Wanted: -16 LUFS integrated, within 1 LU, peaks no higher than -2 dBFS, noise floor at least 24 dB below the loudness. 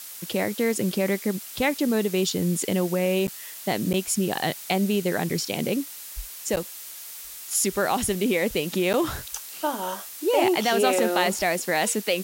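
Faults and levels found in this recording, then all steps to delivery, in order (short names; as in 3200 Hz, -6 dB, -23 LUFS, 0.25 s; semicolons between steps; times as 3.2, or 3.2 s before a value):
dropouts 4; longest dropout 9.1 ms; noise floor -40 dBFS; noise floor target -49 dBFS; loudness -25.0 LUFS; peak -7.0 dBFS; loudness target -16.0 LUFS
-> interpolate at 3.27/3.93/6.56/8.93, 9.1 ms; noise print and reduce 9 dB; gain +9 dB; limiter -2 dBFS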